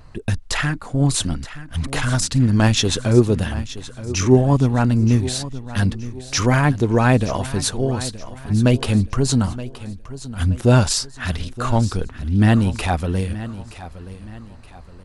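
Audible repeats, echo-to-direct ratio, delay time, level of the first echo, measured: 3, -14.5 dB, 0.923 s, -15.0 dB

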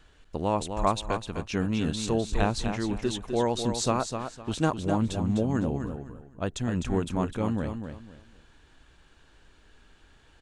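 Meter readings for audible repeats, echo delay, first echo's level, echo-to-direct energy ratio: 3, 0.254 s, -7.5 dB, -7.0 dB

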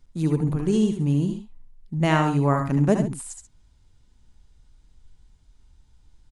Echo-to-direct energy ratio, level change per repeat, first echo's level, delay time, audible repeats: -4.5 dB, no steady repeat, -7.0 dB, 70 ms, 2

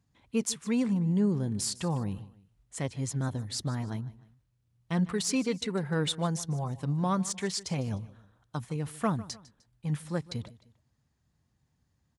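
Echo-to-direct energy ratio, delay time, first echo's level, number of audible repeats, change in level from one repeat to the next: -18.5 dB, 0.152 s, -19.0 dB, 2, -7.5 dB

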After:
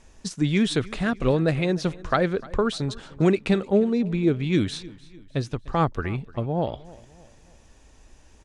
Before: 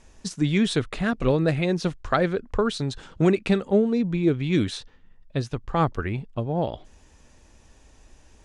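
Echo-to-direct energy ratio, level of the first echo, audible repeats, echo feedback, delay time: -20.0 dB, -21.0 dB, 3, 45%, 0.3 s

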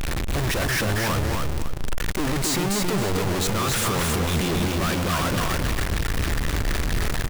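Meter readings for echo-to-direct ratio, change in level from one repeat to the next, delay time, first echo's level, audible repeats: -2.5 dB, -11.0 dB, 0.272 s, -3.0 dB, 2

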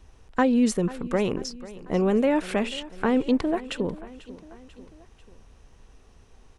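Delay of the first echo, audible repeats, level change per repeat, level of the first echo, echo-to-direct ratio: 0.492 s, 3, -5.0 dB, -18.0 dB, -16.5 dB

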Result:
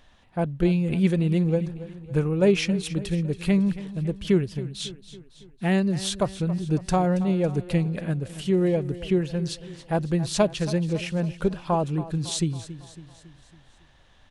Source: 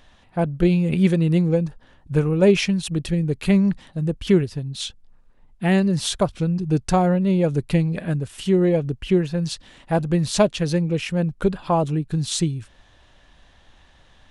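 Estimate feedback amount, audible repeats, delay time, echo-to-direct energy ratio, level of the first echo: 54%, 4, 0.277 s, -14.0 dB, -15.5 dB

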